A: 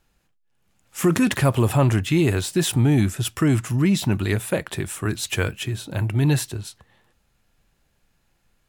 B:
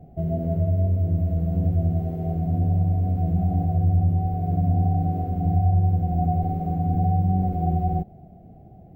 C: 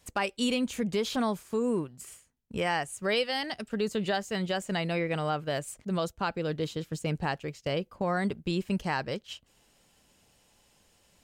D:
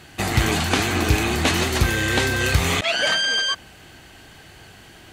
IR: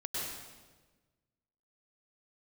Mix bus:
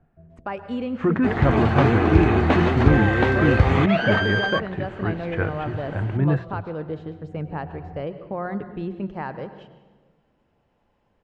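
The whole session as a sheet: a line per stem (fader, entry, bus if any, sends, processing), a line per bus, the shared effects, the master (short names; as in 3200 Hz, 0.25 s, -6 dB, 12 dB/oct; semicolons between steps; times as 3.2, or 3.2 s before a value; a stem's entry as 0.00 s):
-1.5 dB, 0.00 s, no send, LPF 3500 Hz 12 dB/oct; bell 1600 Hz +5 dB 0.65 oct
-15.5 dB, 0.00 s, no send, auto duck -13 dB, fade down 0.40 s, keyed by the first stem
-0.5 dB, 0.30 s, send -12.5 dB, dry
-2.5 dB, 1.05 s, no send, AGC gain up to 12 dB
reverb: on, RT60 1.3 s, pre-delay 94 ms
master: LPF 1400 Hz 12 dB/oct; notches 60/120/180 Hz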